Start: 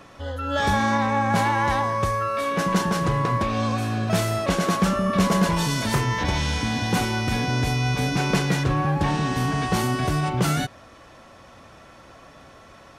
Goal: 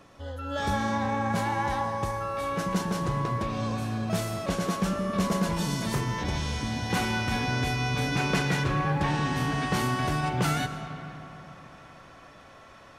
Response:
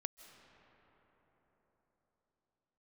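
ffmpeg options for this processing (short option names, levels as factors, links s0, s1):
-filter_complex "[0:a]asetnsamples=n=441:p=0,asendcmd='6.9 equalizer g 4',equalizer=f=1800:t=o:w=2.4:g=-3[s0];[1:a]atrim=start_sample=2205,asetrate=57330,aresample=44100[s1];[s0][s1]afir=irnorm=-1:irlink=0"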